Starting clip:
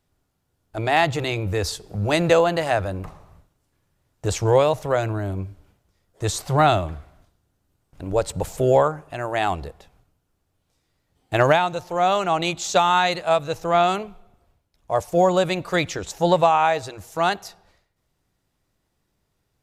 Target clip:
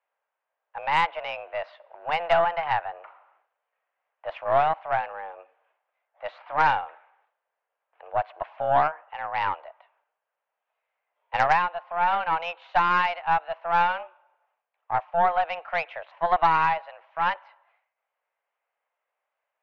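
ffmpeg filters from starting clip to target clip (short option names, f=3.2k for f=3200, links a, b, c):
-af "highpass=f=420:t=q:w=0.5412,highpass=f=420:t=q:w=1.307,lowpass=f=2.6k:t=q:w=0.5176,lowpass=f=2.6k:t=q:w=0.7071,lowpass=f=2.6k:t=q:w=1.932,afreqshift=170,aeval=exprs='0.531*(cos(1*acos(clip(val(0)/0.531,-1,1)))-cos(1*PI/2))+0.0531*(cos(4*acos(clip(val(0)/0.531,-1,1)))-cos(4*PI/2))':c=same,volume=-3.5dB"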